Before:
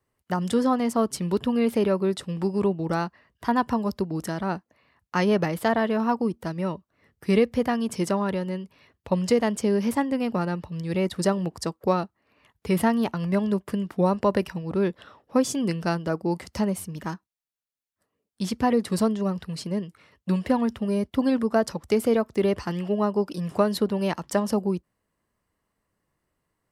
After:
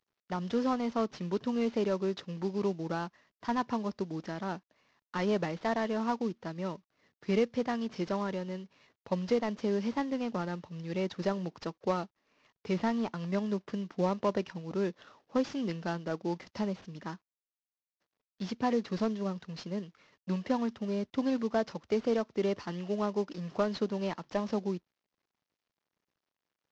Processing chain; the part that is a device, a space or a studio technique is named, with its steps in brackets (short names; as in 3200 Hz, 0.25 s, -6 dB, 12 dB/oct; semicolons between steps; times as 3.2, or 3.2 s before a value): early wireless headset (HPF 150 Hz 12 dB/oct; CVSD 32 kbps); gain -7 dB